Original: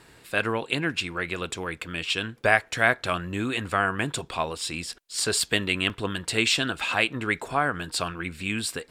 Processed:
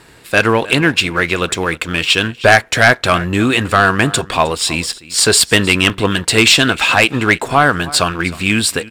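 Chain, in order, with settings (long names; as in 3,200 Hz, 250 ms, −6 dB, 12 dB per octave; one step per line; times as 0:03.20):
leveller curve on the samples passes 1
single-tap delay 311 ms −20 dB
sine wavefolder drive 5 dB, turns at −3.5 dBFS
level +2 dB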